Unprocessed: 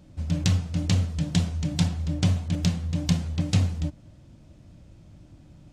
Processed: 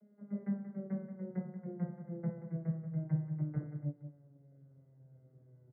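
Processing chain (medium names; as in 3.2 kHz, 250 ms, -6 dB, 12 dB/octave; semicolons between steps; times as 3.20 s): vocoder on a note that slides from G#3, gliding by -9 st; rippled Chebyshev low-pass 2.1 kHz, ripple 6 dB; peaking EQ 530 Hz +6 dB 0.33 oct; doubling 14 ms -6 dB; echo from a far wall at 31 m, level -10 dB; trim -5.5 dB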